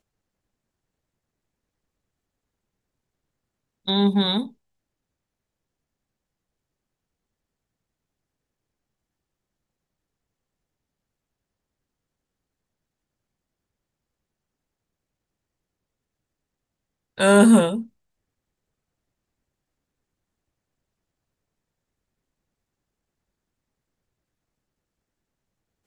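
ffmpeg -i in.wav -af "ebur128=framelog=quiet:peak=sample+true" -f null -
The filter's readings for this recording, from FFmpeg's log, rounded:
Integrated loudness:
  I:         -18.3 LUFS
  Threshold: -29.6 LUFS
Loudness range:
  LRA:         9.1 LU
  Threshold: -44.8 LUFS
  LRA low:   -31.1 LUFS
  LRA high:  -22.0 LUFS
Sample peak:
  Peak:       -4.0 dBFS
True peak:
  Peak:       -4.0 dBFS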